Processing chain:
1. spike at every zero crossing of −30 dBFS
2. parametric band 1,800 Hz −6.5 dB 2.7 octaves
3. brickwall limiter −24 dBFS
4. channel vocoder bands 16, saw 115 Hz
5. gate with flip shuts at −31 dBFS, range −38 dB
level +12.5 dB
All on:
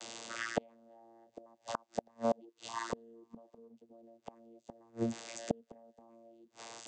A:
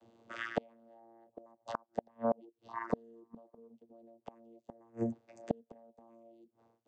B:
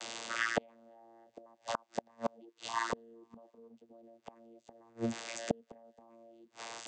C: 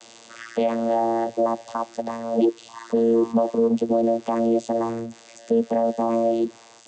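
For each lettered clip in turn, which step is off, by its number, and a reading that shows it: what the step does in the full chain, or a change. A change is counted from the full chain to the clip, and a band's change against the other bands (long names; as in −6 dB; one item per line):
1, distortion level −14 dB
2, change in integrated loudness +1.5 LU
5, change in momentary loudness spread −13 LU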